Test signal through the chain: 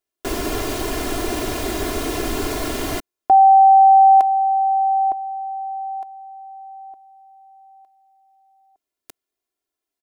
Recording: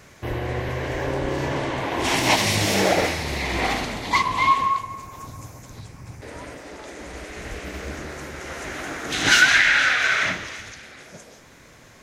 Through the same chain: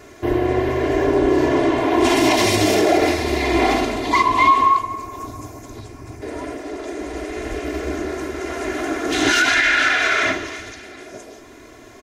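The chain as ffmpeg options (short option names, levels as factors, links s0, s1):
-af "equalizer=f=390:t=o:w=2:g=9.5,alimiter=limit=0.355:level=0:latency=1:release=37,aecho=1:1:2.9:0.76"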